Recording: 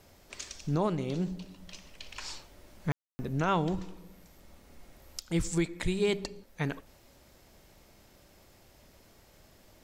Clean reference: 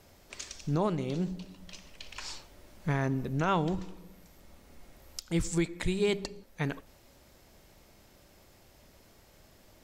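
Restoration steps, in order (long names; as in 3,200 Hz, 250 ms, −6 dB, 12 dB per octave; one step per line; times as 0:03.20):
click removal
ambience match 0:02.92–0:03.19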